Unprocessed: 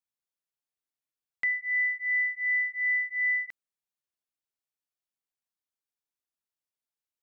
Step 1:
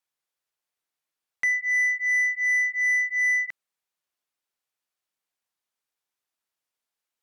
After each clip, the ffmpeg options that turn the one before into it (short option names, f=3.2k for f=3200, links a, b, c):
-filter_complex "[0:a]asplit=2[a][b];[b]highpass=f=720:p=1,volume=9dB,asoftclip=type=tanh:threshold=-22dB[c];[a][c]amix=inputs=2:normalize=0,lowpass=f=1.8k:p=1,volume=-6dB,aemphasis=mode=production:type=cd,volume=5.5dB"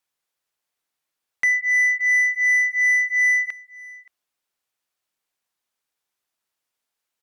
-af "aecho=1:1:574:0.0794,volume=4.5dB"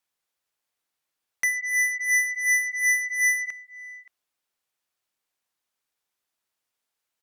-af "aeval=exprs='0.211*(cos(1*acos(clip(val(0)/0.211,-1,1)))-cos(1*PI/2))+0.0841*(cos(3*acos(clip(val(0)/0.211,-1,1)))-cos(3*PI/2))+0.0531*(cos(5*acos(clip(val(0)/0.211,-1,1)))-cos(5*PI/2))':c=same,volume=-1.5dB"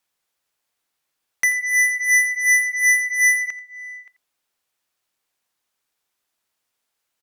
-af "aecho=1:1:87:0.15,volume=5.5dB"